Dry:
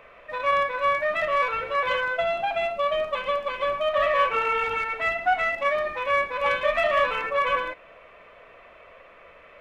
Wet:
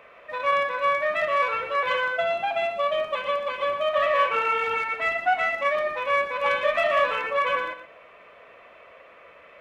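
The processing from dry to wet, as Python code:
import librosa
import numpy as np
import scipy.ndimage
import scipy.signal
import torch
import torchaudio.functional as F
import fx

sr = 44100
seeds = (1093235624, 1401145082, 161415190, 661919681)

y = fx.highpass(x, sr, hz=150.0, slope=6)
y = y + 10.0 ** (-11.5 / 20.0) * np.pad(y, (int(120 * sr / 1000.0), 0))[:len(y)]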